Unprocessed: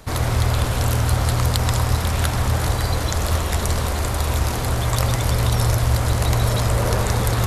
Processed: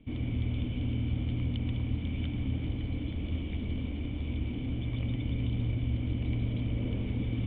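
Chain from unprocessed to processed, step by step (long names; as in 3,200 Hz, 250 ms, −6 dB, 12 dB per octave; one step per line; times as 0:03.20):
formant resonators in series i
notch filter 380 Hz, Q 12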